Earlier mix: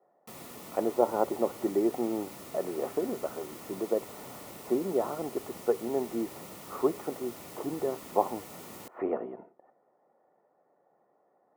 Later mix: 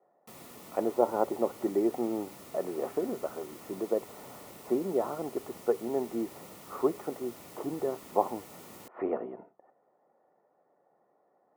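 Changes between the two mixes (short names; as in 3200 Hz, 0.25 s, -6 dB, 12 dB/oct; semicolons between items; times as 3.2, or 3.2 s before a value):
background -3.0 dB; reverb: off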